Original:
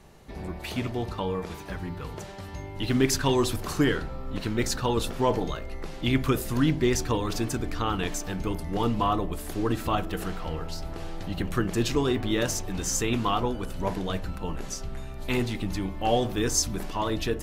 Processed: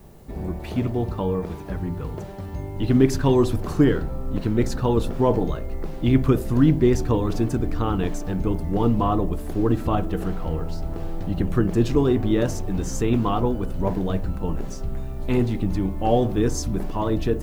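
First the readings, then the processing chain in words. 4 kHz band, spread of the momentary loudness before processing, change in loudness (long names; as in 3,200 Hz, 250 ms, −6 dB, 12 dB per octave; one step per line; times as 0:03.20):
−6.0 dB, 12 LU, +5.0 dB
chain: background noise blue −54 dBFS
tilt shelving filter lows +7.5 dB, about 1,100 Hz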